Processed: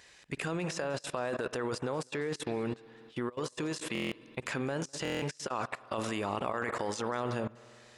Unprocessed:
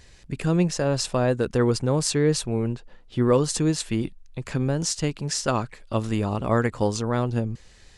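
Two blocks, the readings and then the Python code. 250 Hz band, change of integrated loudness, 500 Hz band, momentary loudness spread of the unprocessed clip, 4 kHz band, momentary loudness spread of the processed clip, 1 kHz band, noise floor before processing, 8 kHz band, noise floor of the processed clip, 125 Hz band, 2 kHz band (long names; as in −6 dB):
−12.5 dB, −11.0 dB, −10.0 dB, 9 LU, −10.0 dB, 4 LU, −6.0 dB, −52 dBFS, −14.0 dB, −58 dBFS, −16.5 dB, −3.0 dB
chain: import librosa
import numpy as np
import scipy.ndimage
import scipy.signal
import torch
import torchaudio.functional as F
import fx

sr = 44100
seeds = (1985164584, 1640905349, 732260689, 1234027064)

p1 = fx.highpass(x, sr, hz=1300.0, slope=6)
p2 = fx.high_shelf(p1, sr, hz=9200.0, db=5.0)
p3 = fx.rev_spring(p2, sr, rt60_s=1.9, pass_ms=(49,), chirp_ms=75, drr_db=14.0)
p4 = fx.over_compress(p3, sr, threshold_db=-36.0, ratio=-1.0)
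p5 = p4 + fx.echo_single(p4, sr, ms=203, db=-20.0, dry=0)
p6 = fx.level_steps(p5, sr, step_db=20)
p7 = fx.high_shelf(p6, sr, hz=3500.0, db=-10.5)
p8 = fx.notch(p7, sr, hz=4400.0, q=17.0)
p9 = fx.buffer_glitch(p8, sr, at_s=(3.93, 5.03), block=1024, repeats=7)
y = F.gain(torch.from_numpy(p9), 7.0).numpy()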